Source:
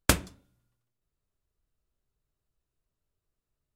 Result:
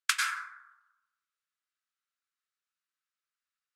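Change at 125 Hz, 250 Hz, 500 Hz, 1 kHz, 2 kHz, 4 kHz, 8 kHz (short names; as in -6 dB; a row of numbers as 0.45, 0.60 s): under -40 dB, under -40 dB, under -40 dB, 0.0 dB, +3.5 dB, 0.0 dB, -3.5 dB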